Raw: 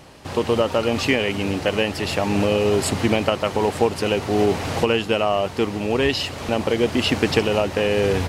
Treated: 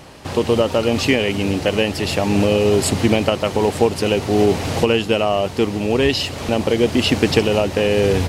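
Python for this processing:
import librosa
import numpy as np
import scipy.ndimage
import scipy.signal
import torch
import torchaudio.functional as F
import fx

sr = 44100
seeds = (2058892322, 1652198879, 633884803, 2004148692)

y = fx.dynamic_eq(x, sr, hz=1300.0, q=0.71, threshold_db=-36.0, ratio=4.0, max_db=-5)
y = F.gain(torch.from_numpy(y), 4.5).numpy()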